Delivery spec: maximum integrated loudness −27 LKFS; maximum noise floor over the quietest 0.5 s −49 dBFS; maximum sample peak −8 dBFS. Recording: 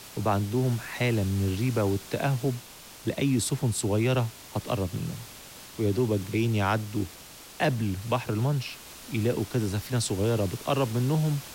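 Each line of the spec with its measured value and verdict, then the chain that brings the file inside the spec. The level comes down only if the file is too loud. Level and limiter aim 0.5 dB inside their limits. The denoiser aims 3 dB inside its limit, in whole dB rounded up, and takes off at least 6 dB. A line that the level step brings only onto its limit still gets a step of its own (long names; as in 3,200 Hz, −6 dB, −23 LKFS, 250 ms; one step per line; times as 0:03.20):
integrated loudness −28.0 LKFS: in spec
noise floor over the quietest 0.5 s −47 dBFS: out of spec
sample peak −11.5 dBFS: in spec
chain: broadband denoise 6 dB, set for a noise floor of −47 dBFS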